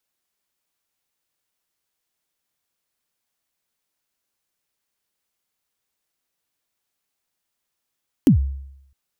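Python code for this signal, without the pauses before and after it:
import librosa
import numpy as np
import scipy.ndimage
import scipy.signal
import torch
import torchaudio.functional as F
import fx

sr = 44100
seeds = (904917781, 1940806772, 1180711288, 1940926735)

y = fx.drum_kick(sr, seeds[0], length_s=0.66, level_db=-7, start_hz=320.0, end_hz=68.0, sweep_ms=107.0, decay_s=0.79, click=True)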